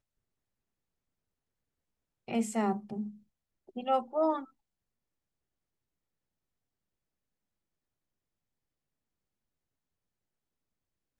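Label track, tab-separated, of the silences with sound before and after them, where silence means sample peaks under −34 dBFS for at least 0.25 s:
3.030000	3.770000	silence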